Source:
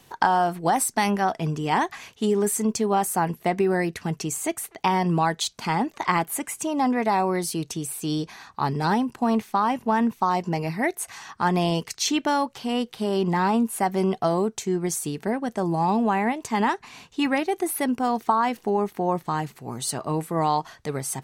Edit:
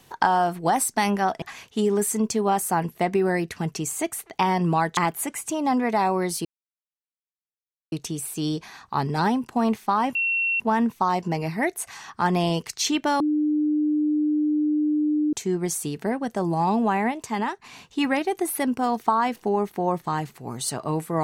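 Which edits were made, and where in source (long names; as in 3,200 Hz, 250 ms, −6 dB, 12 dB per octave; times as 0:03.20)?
0:01.42–0:01.87: remove
0:05.42–0:06.10: remove
0:07.58: splice in silence 1.47 s
0:09.81: insert tone 2,720 Hz −20.5 dBFS 0.45 s
0:12.41–0:14.54: beep over 301 Hz −19 dBFS
0:16.25–0:16.85: fade out, to −7.5 dB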